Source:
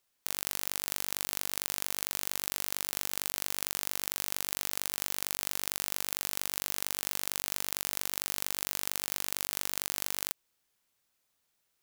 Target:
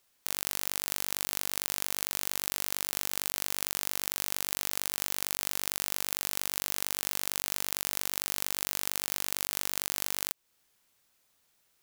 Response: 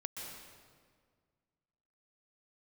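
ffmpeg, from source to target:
-af "alimiter=limit=-12dB:level=0:latency=1:release=288,aeval=exprs='0.251*(cos(1*acos(clip(val(0)/0.251,-1,1)))-cos(1*PI/2))+0.0398*(cos(6*acos(clip(val(0)/0.251,-1,1)))-cos(6*PI/2))':channel_layout=same,volume=6.5dB"

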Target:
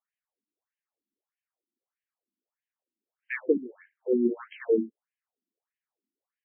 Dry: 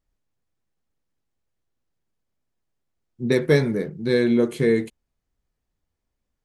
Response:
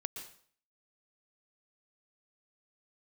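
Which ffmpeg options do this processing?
-filter_complex "[0:a]asettb=1/sr,asplit=3[link_01][link_02][link_03];[link_01]atrim=end=3.574[link_04];[link_02]atrim=start=3.57:end=3.98,asetpts=PTS-STARTPTS,afade=type=in:duration=0.004:curve=qsin,afade=type=out:start_time=0.406:duration=0.004:curve=qsin,acrossover=split=150[link_05][link_06];[link_06]acompressor=threshold=-33dB:ratio=5[link_07];[link_05][link_07]amix=inputs=2:normalize=0[link_08];[link_03]atrim=start=3.976[link_09];[link_04][link_08]acrossfade=duration=0.004:curve1=hsin:curve2=qsin[link_10];[link_10][link_09]acrossfade=duration=0.004:curve1=qsin:curve2=hsin,afftfilt=real='re*between(b*sr/1024,250*pow(2300/250,0.5+0.5*sin(2*PI*1.6*pts/sr))/1.41,250*pow(2300/250,0.5+0.5*sin(2*PI*1.6*pts/sr))*1.41)':imag='im*between(b*sr/1024,250*pow(2300/250,0.5+0.5*sin(2*PI*1.6*pts/sr))/1.41,250*pow(2300/250,0.5+0.5*sin(2*PI*1.6*pts/sr))*1.41)':win_size=1024:overlap=0.75,volume=-1dB"

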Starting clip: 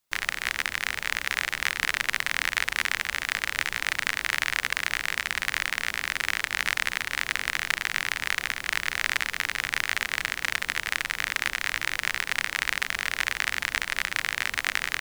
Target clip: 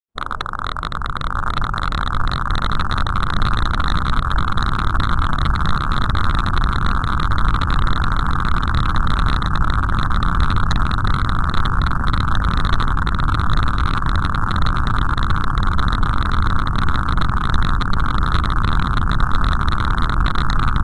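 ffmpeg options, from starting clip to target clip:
ffmpeg -i in.wav -af "highshelf=frequency=4300:gain=-9.5,aecho=1:1:831|1662|2493|3324|4155|4986:0.562|0.281|0.141|0.0703|0.0351|0.0176,acontrast=76,asuperstop=centerf=5400:order=8:qfactor=0.63,asetrate=31752,aresample=44100,aeval=exprs='0.188*(abs(mod(val(0)/0.188+3,4)-2)-1)':channel_layout=same,acontrast=78,asetrate=41625,aresample=44100,atempo=1.05946,asubboost=boost=9:cutoff=160,afftdn=noise_reduction=24:noise_floor=-28,volume=-1dB" -ar 22050 -c:a adpcm_ima_wav out.wav

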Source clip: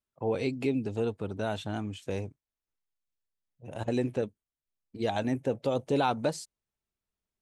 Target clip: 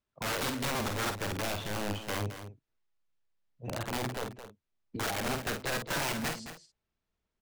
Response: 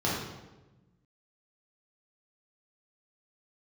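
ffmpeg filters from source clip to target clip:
-filter_complex "[0:a]lowpass=6600,highshelf=frequency=5200:gain=-9.5,alimiter=level_in=3dB:limit=-24dB:level=0:latency=1:release=329,volume=-3dB,asettb=1/sr,asplit=3[link_01][link_02][link_03];[link_01]atrim=end=2.154[link_04];[link_02]atrim=start=2.15:end=4.96,asetpts=PTS-STARTPTS,afade=type=in:duration=0.004:curve=qsin,afade=type=out:start_time=2.806:duration=0.004:curve=qsin,acrossover=split=130[link_05][link_06];[link_06]acompressor=threshold=-39dB:ratio=3[link_07];[link_05][link_07]amix=inputs=2:normalize=0[link_08];[link_03]atrim=start=4.956[link_09];[link_04][link_08]acrossfade=duration=0.004:curve1=hsin:curve2=qsin[link_10];[link_10][link_09]acrossfade=duration=0.004:curve1=qsin:curve2=hsin,aeval=exprs='(mod(47.3*val(0)+1,2)-1)/47.3':channel_layout=same,asplit=2[link_11][link_12];[link_12]adelay=49,volume=-6.5dB[link_13];[link_11][link_13]amix=inputs=2:normalize=0,aecho=1:1:217:0.282,volume=5.5dB"

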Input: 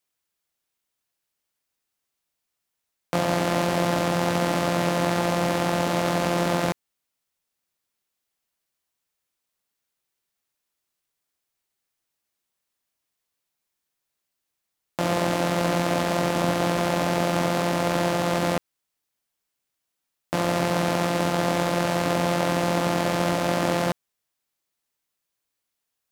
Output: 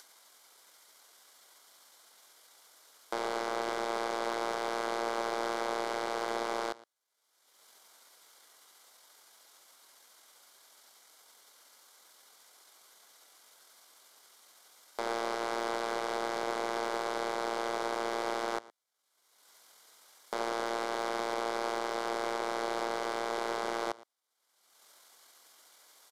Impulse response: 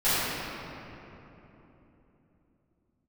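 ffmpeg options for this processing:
-filter_complex "[0:a]aeval=exprs='if(lt(val(0),0),0.251*val(0),val(0))':channel_layout=same,highshelf=frequency=9800:gain=-6.5,acompressor=mode=upward:threshold=-37dB:ratio=2.5,asetrate=29433,aresample=44100,atempo=1.49831,highpass=510,alimiter=limit=-21.5dB:level=0:latency=1:release=33,equalizer=frequency=2600:width=5.7:gain=-14,bandreject=frequency=1800:width=9.1,asplit=2[link_01][link_02];[link_02]aecho=0:1:115:0.0944[link_03];[link_01][link_03]amix=inputs=2:normalize=0,aeval=exprs='0.075*(cos(1*acos(clip(val(0)/0.075,-1,1)))-cos(1*PI/2))+0.00299*(cos(6*acos(clip(val(0)/0.075,-1,1)))-cos(6*PI/2))':channel_layout=same,volume=3dB"

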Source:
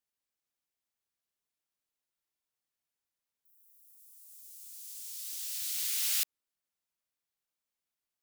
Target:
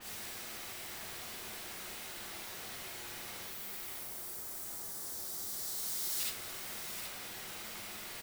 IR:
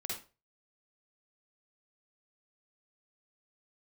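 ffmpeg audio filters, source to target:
-filter_complex "[0:a]aeval=exprs='val(0)+0.5*0.0266*sgn(val(0))':channel_layout=same,asettb=1/sr,asplit=3[link_01][link_02][link_03];[link_01]atrim=end=3.984[link_04];[link_02]atrim=start=3.98:end=6.2,asetpts=PTS-STARTPTS,afade=type=in:duration=0.004:curve=qsin,afade=type=out:start_time=2.216:duration=0.004:curve=qsin,equalizer=frequency=2600:width_type=o:width=1:gain=-14[link_05];[link_03]atrim=start=6.196[link_06];[link_04][link_05]acrossfade=duration=0.004:curve1=hsin:curve2=qsin[link_07];[link_07][link_06]acrossfade=duration=0.004:curve1=qsin:curve2=hsin,aecho=1:1:776:0.335[link_08];[1:a]atrim=start_sample=2205[link_09];[link_08][link_09]afir=irnorm=-1:irlink=0,adynamicequalizer=threshold=0.00355:dfrequency=4000:dqfactor=0.7:tfrequency=4000:tqfactor=0.7:attack=5:release=100:ratio=0.375:range=3:mode=cutabove:tftype=highshelf,volume=-2dB"

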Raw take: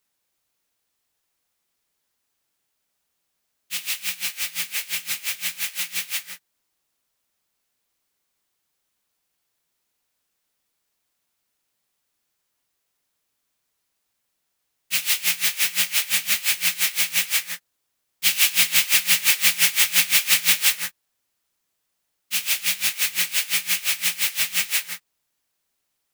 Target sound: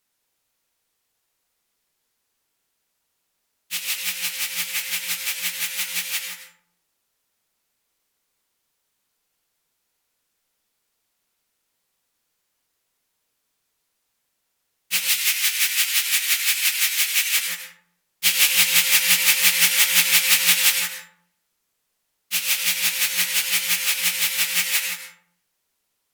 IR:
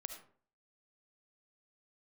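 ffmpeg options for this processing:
-filter_complex "[0:a]asettb=1/sr,asplit=3[link_01][link_02][link_03];[link_01]atrim=end=15.084[link_04];[link_02]atrim=start=15.08:end=17.37,asetpts=PTS-STARTPTS,afade=type=in:duration=0.004:curve=qsin,afade=type=out:start_time=2.286:duration=0.004:curve=qsin,highpass=1200[link_05];[link_03]atrim=start=17.366[link_06];[link_04][link_05]acrossfade=duration=0.004:curve1=hsin:curve2=qsin[link_07];[link_07][link_06]acrossfade=duration=0.004:curve1=qsin:curve2=hsin[link_08];[1:a]atrim=start_sample=2205,asetrate=32193,aresample=44100[link_09];[link_08][link_09]afir=irnorm=-1:irlink=0,volume=4dB"

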